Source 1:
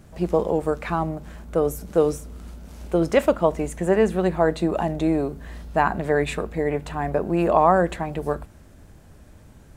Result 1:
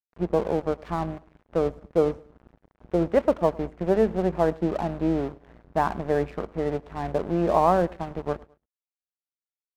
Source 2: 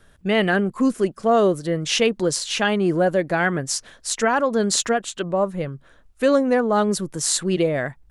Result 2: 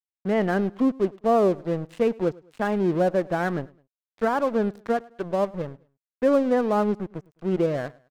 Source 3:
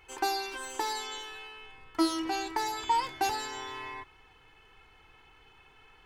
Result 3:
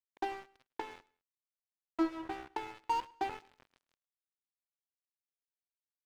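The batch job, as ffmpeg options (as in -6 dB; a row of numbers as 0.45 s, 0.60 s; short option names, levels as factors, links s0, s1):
-af "lowpass=1200,aeval=exprs='sgn(val(0))*max(abs(val(0))-0.0178,0)':c=same,aecho=1:1:105|210:0.0668|0.0241,volume=0.841"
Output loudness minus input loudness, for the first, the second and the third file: -3.0 LU, -4.0 LU, -6.5 LU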